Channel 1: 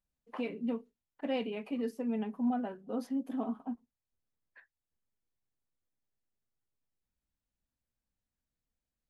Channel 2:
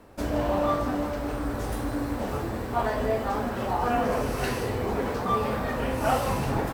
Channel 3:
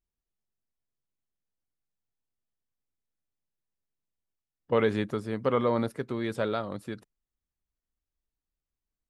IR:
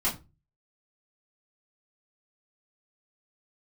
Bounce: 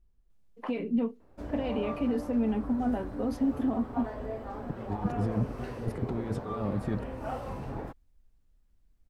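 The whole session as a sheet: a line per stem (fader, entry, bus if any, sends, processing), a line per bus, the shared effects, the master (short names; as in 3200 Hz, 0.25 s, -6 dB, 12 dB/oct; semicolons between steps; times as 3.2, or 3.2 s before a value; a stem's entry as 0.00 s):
+1.0 dB, 0.30 s, bus A, no send, tilt +2.5 dB/oct
-12.5 dB, 1.20 s, no bus, no send, low shelf 210 Hz -11.5 dB
+2.0 dB, 0.00 s, bus A, no send, dry
bus A: 0.0 dB, negative-ratio compressor -35 dBFS, ratio -0.5; limiter -27 dBFS, peak gain reduction 9.5 dB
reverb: off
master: tilt -3.5 dB/oct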